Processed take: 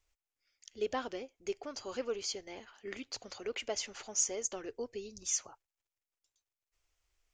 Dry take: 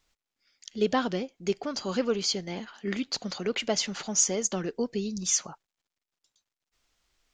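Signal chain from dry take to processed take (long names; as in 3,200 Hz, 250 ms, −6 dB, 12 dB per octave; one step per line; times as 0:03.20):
drawn EQ curve 110 Hz 0 dB, 160 Hz −26 dB, 260 Hz −11 dB, 410 Hz −5 dB, 1,600 Hz −7 dB, 2,500 Hz −4 dB, 3,900 Hz −10 dB, 6,300 Hz −4 dB
level −3 dB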